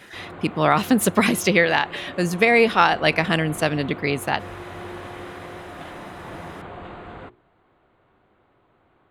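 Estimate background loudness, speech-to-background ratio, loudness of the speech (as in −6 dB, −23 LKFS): −38.0 LKFS, 18.0 dB, −20.0 LKFS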